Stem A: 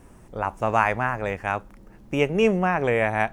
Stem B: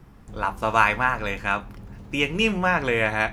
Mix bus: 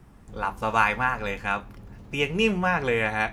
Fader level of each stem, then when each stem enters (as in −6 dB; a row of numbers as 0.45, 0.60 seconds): −11.5, −3.0 decibels; 0.00, 0.00 seconds